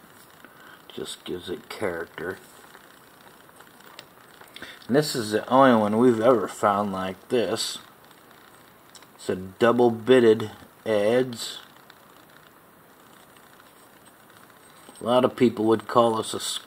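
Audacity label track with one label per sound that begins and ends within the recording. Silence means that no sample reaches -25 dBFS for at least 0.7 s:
0.980000	2.320000	sound
3.990000	7.760000	sound
9.290000	11.500000	sound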